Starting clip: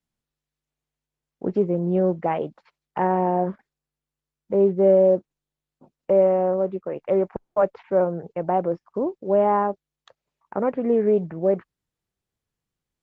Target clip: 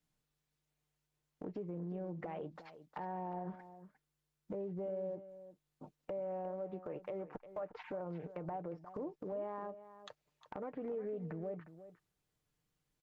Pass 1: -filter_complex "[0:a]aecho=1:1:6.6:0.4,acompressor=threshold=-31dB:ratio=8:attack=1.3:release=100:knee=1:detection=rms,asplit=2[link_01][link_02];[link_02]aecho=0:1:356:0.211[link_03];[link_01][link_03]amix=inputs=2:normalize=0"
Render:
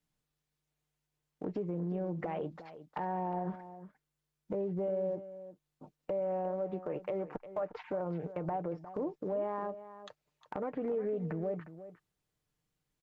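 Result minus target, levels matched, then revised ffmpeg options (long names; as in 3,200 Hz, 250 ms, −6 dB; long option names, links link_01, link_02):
downward compressor: peak gain reduction −6.5 dB
-filter_complex "[0:a]aecho=1:1:6.6:0.4,acompressor=threshold=-38.5dB:ratio=8:attack=1.3:release=100:knee=1:detection=rms,asplit=2[link_01][link_02];[link_02]aecho=0:1:356:0.211[link_03];[link_01][link_03]amix=inputs=2:normalize=0"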